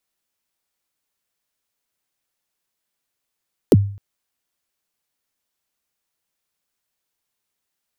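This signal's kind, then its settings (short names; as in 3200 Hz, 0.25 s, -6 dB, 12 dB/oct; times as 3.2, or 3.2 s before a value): kick drum length 0.26 s, from 520 Hz, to 100 Hz, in 35 ms, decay 0.48 s, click on, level -4.5 dB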